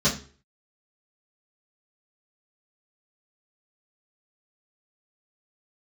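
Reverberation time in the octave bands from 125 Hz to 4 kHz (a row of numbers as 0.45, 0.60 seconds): 0.50, 0.40, 0.45, 0.40, 0.40, 0.35 seconds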